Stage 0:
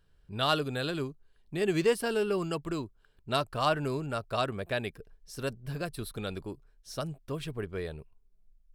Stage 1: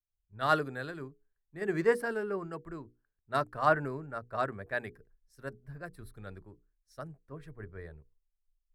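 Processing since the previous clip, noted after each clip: resonant high shelf 2.3 kHz -7.5 dB, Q 3; hum notches 60/120/180/240/300/360/420/480 Hz; three bands expanded up and down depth 100%; trim -5.5 dB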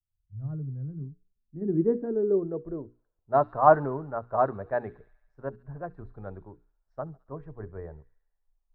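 low-pass sweep 120 Hz -> 860 Hz, 0.54–3.49 s; feedback echo behind a high-pass 69 ms, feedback 66%, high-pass 4 kHz, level -7 dB; trim +4.5 dB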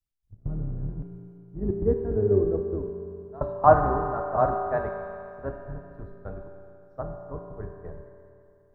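octave divider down 2 oct, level +1 dB; trance gate "x.x.xxxxx.xx.x" 132 bpm -24 dB; on a send at -2 dB: reverberation RT60 2.7 s, pre-delay 5 ms

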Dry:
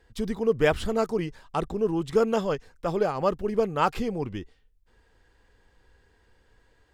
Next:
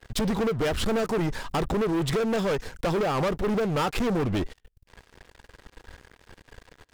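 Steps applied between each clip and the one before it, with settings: compression 16:1, threshold -29 dBFS, peak gain reduction 13.5 dB; waveshaping leveller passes 5; trim -1.5 dB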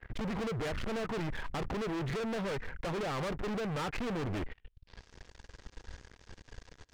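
low-pass sweep 2 kHz -> 6.2 kHz, 4.48–5.07 s; bass shelf 190 Hz +7.5 dB; hard clipper -28.5 dBFS, distortion -8 dB; trim -5.5 dB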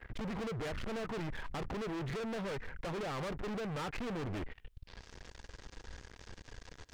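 peak limiter -44.5 dBFS, peak gain reduction 10.5 dB; trim +7 dB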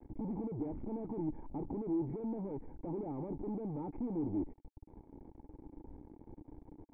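bit crusher 9-bit; cascade formant filter u; trim +11.5 dB

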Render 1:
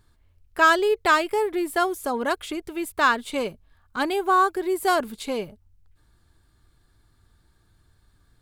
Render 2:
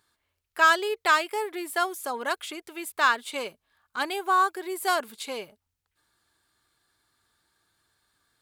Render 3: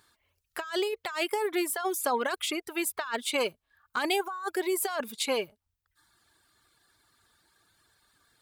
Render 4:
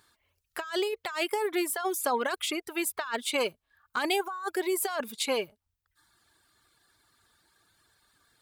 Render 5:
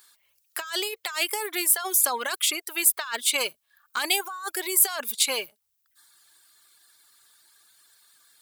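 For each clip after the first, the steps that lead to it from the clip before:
high-pass 980 Hz 6 dB/octave
compressor with a negative ratio -31 dBFS, ratio -1; reverb removal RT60 0.81 s; trim +1.5 dB
no audible change
tilt EQ +4 dB/octave

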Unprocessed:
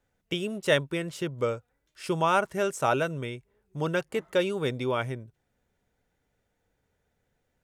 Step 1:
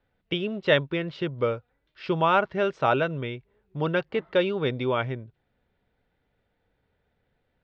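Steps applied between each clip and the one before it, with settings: steep low-pass 4.3 kHz 36 dB/octave; trim +2.5 dB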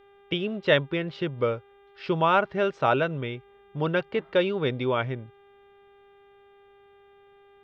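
mains buzz 400 Hz, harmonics 9, -56 dBFS -7 dB/octave

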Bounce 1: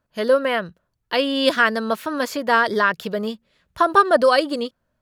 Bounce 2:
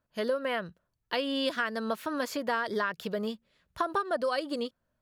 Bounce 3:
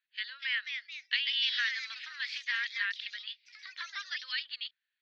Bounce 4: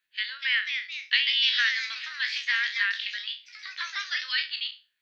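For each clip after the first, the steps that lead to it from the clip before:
compression 5:1, threshold -20 dBFS, peak gain reduction 11 dB; trim -6.5 dB
elliptic band-pass 1.8–4.2 kHz, stop band 70 dB; ever faster or slower copies 264 ms, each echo +2 st, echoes 3, each echo -6 dB; trim +6 dB
spectral sustain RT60 0.30 s; trim +6 dB

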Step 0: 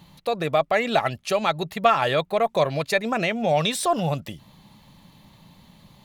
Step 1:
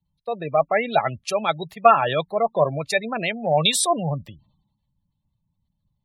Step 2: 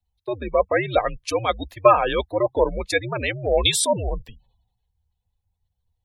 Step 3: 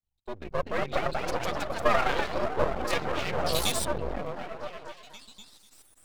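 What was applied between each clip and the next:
spectral gate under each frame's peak -20 dB strong; three bands expanded up and down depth 100%
frequency shift -97 Hz
ever faster or slower copies 293 ms, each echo +2 st, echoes 3; repeats whose band climbs or falls 247 ms, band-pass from 210 Hz, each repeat 0.7 oct, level 0 dB; half-wave rectifier; trim -6.5 dB

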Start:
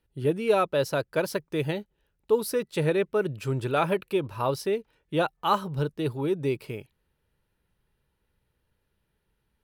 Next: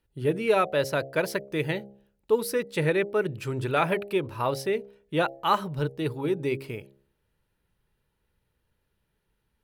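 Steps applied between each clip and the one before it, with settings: de-hum 67.5 Hz, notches 12; dynamic bell 2 kHz, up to +7 dB, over -49 dBFS, Q 2.4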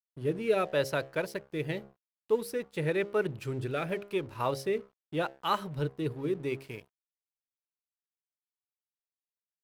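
rotary cabinet horn 0.85 Hz; crossover distortion -50 dBFS; trim -2.5 dB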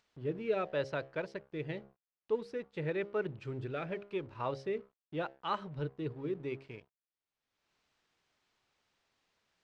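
Gaussian low-pass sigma 1.7 samples; upward compressor, threshold -49 dBFS; trim -5.5 dB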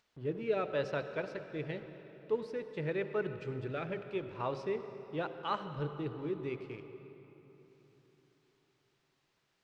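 reverberation RT60 3.8 s, pre-delay 65 ms, DRR 9.5 dB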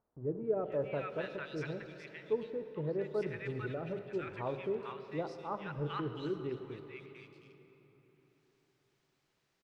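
three bands offset in time lows, mids, highs 450/720 ms, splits 1.1/3.3 kHz

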